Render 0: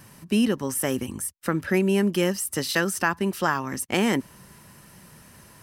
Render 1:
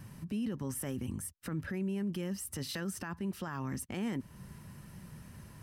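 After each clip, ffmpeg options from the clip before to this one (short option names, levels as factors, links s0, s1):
-af "bass=f=250:g=11,treble=f=4000:g=-3,acompressor=threshold=0.0282:ratio=1.5,alimiter=limit=0.075:level=0:latency=1:release=12,volume=0.473"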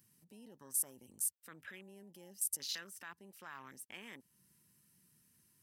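-af "aeval=exprs='0.0376*(cos(1*acos(clip(val(0)/0.0376,-1,1)))-cos(1*PI/2))+0.00531*(cos(2*acos(clip(val(0)/0.0376,-1,1)))-cos(2*PI/2))':c=same,afwtdn=0.00447,aderivative,volume=2.24"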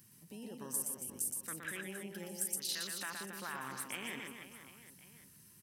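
-filter_complex "[0:a]acompressor=threshold=0.00501:ratio=3,asplit=2[s0][s1];[s1]aecho=0:1:120|276|478.8|742.4|1085:0.631|0.398|0.251|0.158|0.1[s2];[s0][s2]amix=inputs=2:normalize=0,volume=2.51"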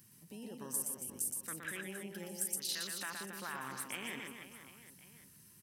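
-af anull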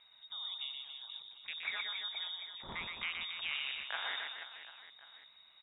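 -af "lowpass=f=3300:t=q:w=0.5098,lowpass=f=3300:t=q:w=0.6013,lowpass=f=3300:t=q:w=0.9,lowpass=f=3300:t=q:w=2.563,afreqshift=-3900,volume=1.68"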